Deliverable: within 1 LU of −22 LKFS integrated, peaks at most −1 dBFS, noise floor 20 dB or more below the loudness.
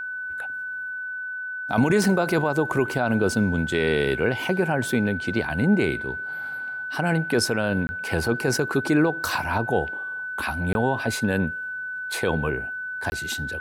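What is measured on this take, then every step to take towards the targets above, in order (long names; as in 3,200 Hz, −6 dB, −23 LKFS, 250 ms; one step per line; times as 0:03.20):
number of dropouts 3; longest dropout 20 ms; interfering tone 1,500 Hz; level of the tone −29 dBFS; integrated loudness −24.5 LKFS; sample peak −9.5 dBFS; target loudness −22.0 LKFS
→ repair the gap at 0:07.87/0:10.73/0:13.10, 20 ms
notch filter 1,500 Hz, Q 30
level +2.5 dB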